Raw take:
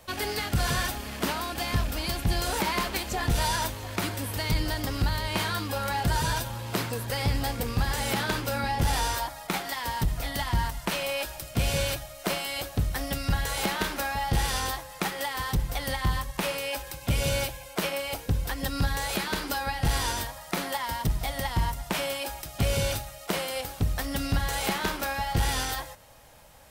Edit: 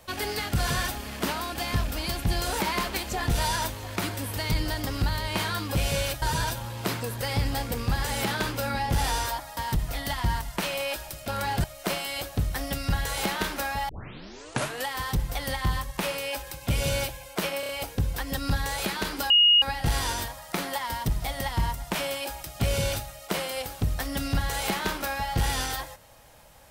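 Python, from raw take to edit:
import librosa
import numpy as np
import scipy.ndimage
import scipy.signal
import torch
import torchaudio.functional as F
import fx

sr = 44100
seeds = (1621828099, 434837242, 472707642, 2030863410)

y = fx.edit(x, sr, fx.swap(start_s=5.75, length_s=0.36, other_s=11.57, other_length_s=0.47),
    fx.cut(start_s=9.46, length_s=0.4),
    fx.tape_start(start_s=14.29, length_s=1.0),
    fx.stutter(start_s=18.0, slice_s=0.03, count=4),
    fx.insert_tone(at_s=19.61, length_s=0.32, hz=2870.0, db=-14.5), tone=tone)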